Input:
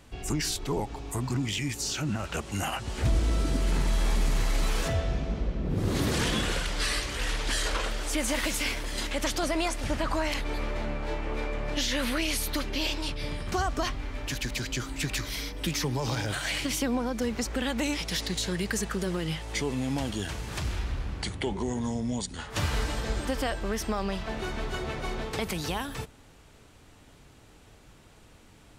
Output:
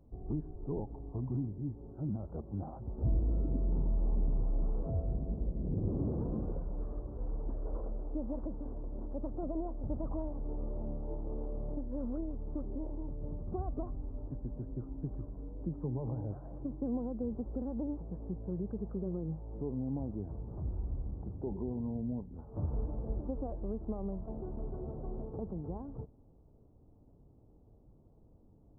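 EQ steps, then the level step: Gaussian low-pass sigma 13 samples; -5.0 dB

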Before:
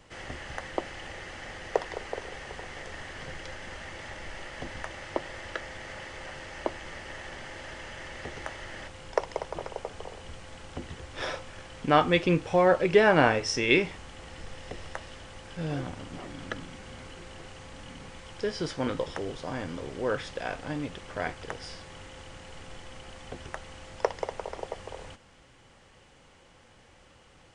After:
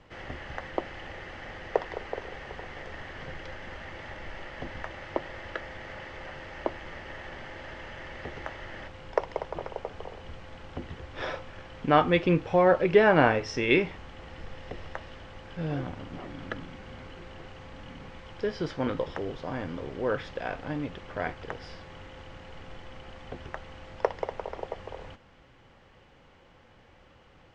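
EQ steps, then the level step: distance through air 120 m; treble shelf 5.2 kHz -6.5 dB; +1.0 dB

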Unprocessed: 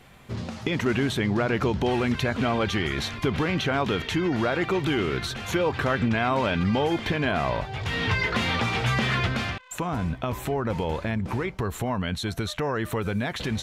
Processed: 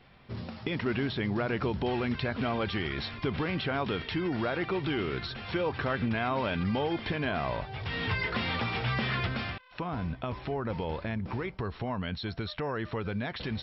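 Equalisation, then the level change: brick-wall FIR low-pass 5.6 kHz; -6.0 dB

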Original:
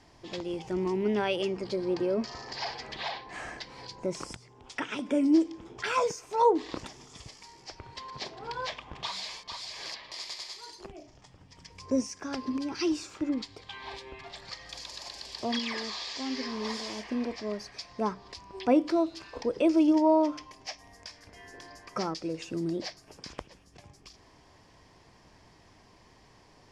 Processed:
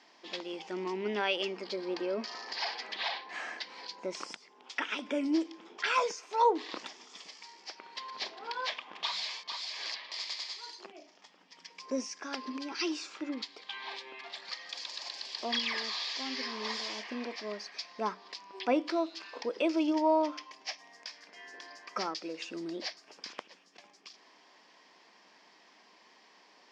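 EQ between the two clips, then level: brick-wall FIR high-pass 170 Hz; distance through air 190 m; tilt EQ +4 dB/octave; 0.0 dB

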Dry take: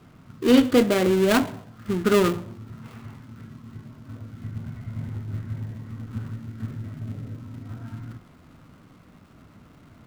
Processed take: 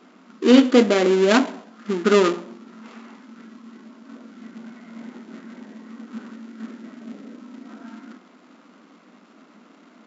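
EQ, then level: brick-wall FIR band-pass 190–7600 Hz; +3.5 dB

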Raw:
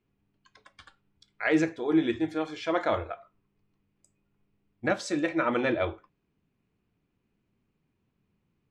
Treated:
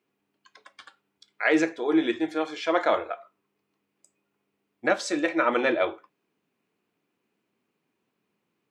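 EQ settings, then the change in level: high-pass 330 Hz 12 dB/octave; +4.5 dB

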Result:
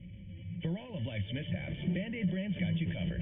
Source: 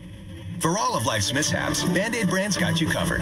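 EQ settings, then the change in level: cascade formant filter i; static phaser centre 1.1 kHz, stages 6; +6.5 dB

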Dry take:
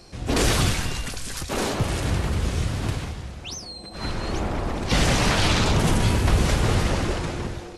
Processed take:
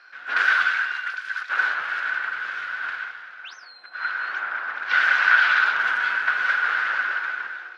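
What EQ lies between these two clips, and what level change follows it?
resonant high-pass 1.5 kHz, resonance Q 13; distance through air 310 m; 0.0 dB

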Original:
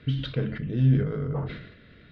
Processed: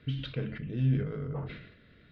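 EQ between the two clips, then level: dynamic bell 2.5 kHz, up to +6 dB, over -57 dBFS, Q 2.9; -6.5 dB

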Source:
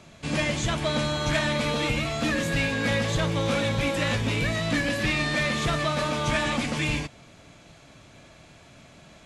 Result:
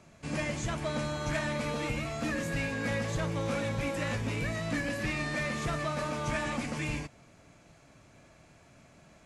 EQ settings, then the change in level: peaking EQ 3.5 kHz -8 dB 0.64 oct; -6.5 dB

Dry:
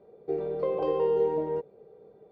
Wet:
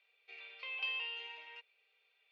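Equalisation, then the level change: resonant high-pass 2.6 kHz, resonance Q 6.1; distance through air 280 m; differentiator; +17.0 dB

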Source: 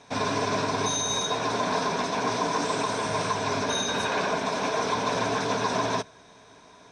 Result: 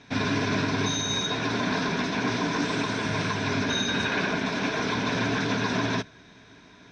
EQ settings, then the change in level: distance through air 150 m; high-order bell 720 Hz -10 dB; +5.5 dB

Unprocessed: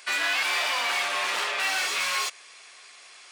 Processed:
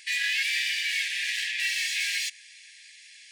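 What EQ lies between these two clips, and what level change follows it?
brick-wall FIR high-pass 1.6 kHz; treble shelf 9.2 kHz -3.5 dB; 0.0 dB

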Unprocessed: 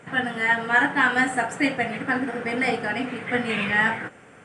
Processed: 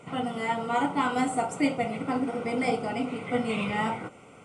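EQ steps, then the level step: Butterworth band-stop 1.7 kHz, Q 2.8; dynamic bell 2.6 kHz, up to -6 dB, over -41 dBFS, Q 0.81; -1.0 dB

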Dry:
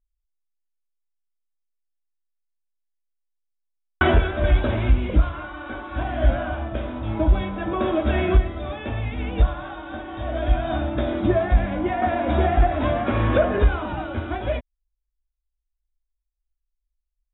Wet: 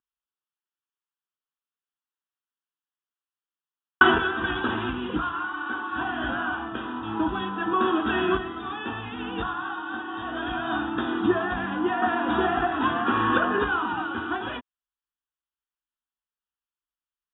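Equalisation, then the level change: high-pass 340 Hz 12 dB/octave; steep low-pass 3.3 kHz 48 dB/octave; static phaser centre 2.2 kHz, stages 6; +7.0 dB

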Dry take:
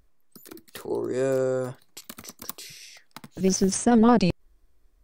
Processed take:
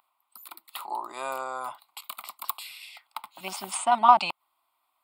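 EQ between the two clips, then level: resonant high-pass 910 Hz, resonance Q 2.2; static phaser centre 1.7 kHz, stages 6; +5.0 dB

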